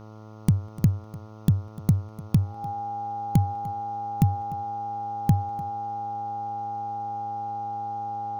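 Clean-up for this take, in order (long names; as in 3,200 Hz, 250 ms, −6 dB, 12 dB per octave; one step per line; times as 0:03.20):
hum removal 108.1 Hz, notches 13
notch filter 810 Hz, Q 30
downward expander −36 dBFS, range −21 dB
echo removal 298 ms −19 dB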